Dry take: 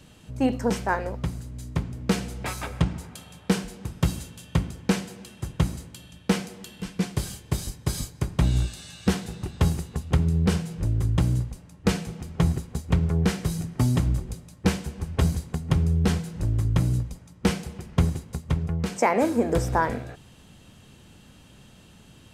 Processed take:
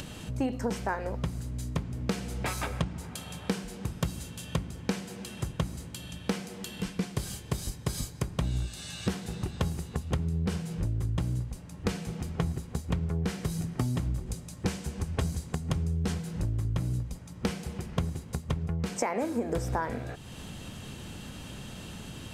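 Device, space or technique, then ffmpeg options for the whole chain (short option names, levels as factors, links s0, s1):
upward and downward compression: -filter_complex "[0:a]asettb=1/sr,asplit=3[s0][s1][s2];[s0]atrim=end=14.264[s3];[s1]atrim=start=14.26:end=16.14,asetpts=PTS-STARTPTS,afade=t=in:d=0.004:c=qsin,afade=t=out:st=1.876:d=0.004:c=qsin,equalizer=f=7300:t=o:w=1.3:g=4[s4];[s2]atrim=start=16.136[s5];[s3][s4]acrossfade=d=0.004:c1=hsin:c2=qsin[s6];[s6][s5]acrossfade=d=0.004:c1=qsin:c2=hsin,acompressor=mode=upward:threshold=0.0178:ratio=2.5,acompressor=threshold=0.0316:ratio=4,volume=1.26"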